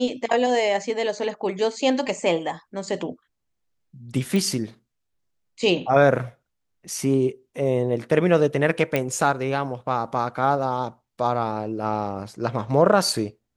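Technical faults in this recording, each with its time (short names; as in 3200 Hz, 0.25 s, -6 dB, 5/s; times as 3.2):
4.36 pop
8.96 pop -9 dBFS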